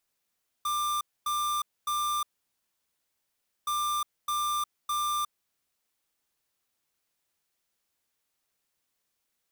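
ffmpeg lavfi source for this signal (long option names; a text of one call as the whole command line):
ffmpeg -f lavfi -i "aevalsrc='0.0355*(2*lt(mod(1190*t,1),0.5)-1)*clip(min(mod(mod(t,3.02),0.61),0.36-mod(mod(t,3.02),0.61))/0.005,0,1)*lt(mod(t,3.02),1.83)':duration=6.04:sample_rate=44100" out.wav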